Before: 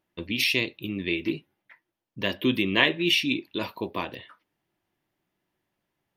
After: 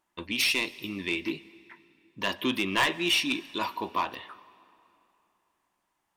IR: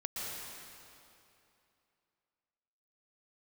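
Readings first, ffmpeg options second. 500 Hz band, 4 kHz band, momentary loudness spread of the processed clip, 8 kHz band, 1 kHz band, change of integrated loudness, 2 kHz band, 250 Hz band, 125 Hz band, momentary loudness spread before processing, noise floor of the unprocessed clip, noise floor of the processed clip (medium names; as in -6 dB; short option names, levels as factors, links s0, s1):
-5.0 dB, -2.0 dB, 11 LU, +4.5 dB, +4.5 dB, -2.5 dB, -2.0 dB, -5.0 dB, -8.0 dB, 12 LU, -83 dBFS, -78 dBFS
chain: -filter_complex "[0:a]equalizer=f=125:t=o:w=1:g=-9,equalizer=f=500:t=o:w=1:g=-5,equalizer=f=1000:t=o:w=1:g=11,equalizer=f=8000:t=o:w=1:g=10,asoftclip=type=tanh:threshold=0.15,asplit=2[s0][s1];[1:a]atrim=start_sample=2205[s2];[s1][s2]afir=irnorm=-1:irlink=0,volume=0.0944[s3];[s0][s3]amix=inputs=2:normalize=0,volume=0.794"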